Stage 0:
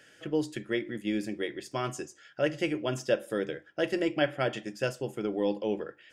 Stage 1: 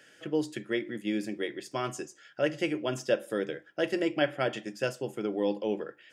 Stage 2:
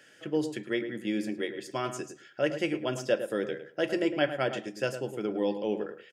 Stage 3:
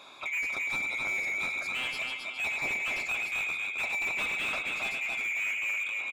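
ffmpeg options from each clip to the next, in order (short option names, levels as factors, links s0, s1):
-af "highpass=130"
-filter_complex "[0:a]asplit=2[s0][s1];[s1]adelay=107,lowpass=f=1700:p=1,volume=0.355,asplit=2[s2][s3];[s3]adelay=107,lowpass=f=1700:p=1,volume=0.18,asplit=2[s4][s5];[s5]adelay=107,lowpass=f=1700:p=1,volume=0.18[s6];[s0][s2][s4][s6]amix=inputs=4:normalize=0"
-filter_complex "[0:a]afftfilt=real='real(if(lt(b,920),b+92*(1-2*mod(floor(b/92),2)),b),0)':imag='imag(if(lt(b,920),b+92*(1-2*mod(floor(b/92),2)),b),0)':win_size=2048:overlap=0.75,aecho=1:1:267|532:0.422|0.126,asplit=2[s0][s1];[s1]highpass=f=720:p=1,volume=25.1,asoftclip=type=tanh:threshold=0.282[s2];[s0][s2]amix=inputs=2:normalize=0,lowpass=f=1200:p=1,volume=0.501,volume=0.447"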